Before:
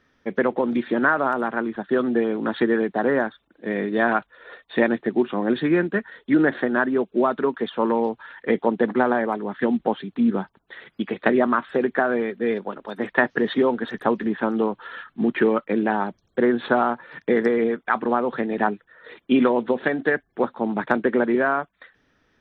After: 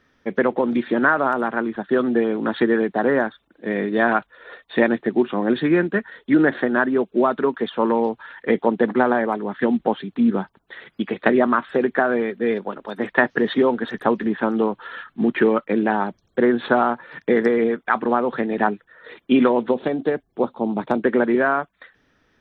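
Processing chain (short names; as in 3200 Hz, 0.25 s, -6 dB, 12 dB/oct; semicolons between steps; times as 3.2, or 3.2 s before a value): 19.74–21.03 bell 1700 Hz -14 dB 0.8 oct; gain +2 dB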